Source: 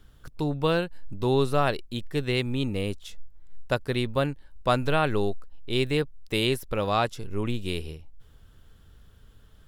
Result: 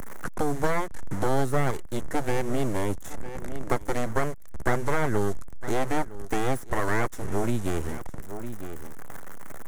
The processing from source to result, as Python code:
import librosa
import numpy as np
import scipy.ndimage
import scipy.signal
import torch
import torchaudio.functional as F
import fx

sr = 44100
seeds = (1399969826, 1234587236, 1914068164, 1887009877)

y = fx.delta_mod(x, sr, bps=64000, step_db=-38.5)
y = np.abs(y)
y = fx.band_shelf(y, sr, hz=3500.0, db=-11.5, octaves=1.3)
y = y + 10.0 ** (-21.0 / 20.0) * np.pad(y, (int(956 * sr / 1000.0), 0))[:len(y)]
y = fx.band_squash(y, sr, depth_pct=70)
y = y * 10.0 ** (3.0 / 20.0)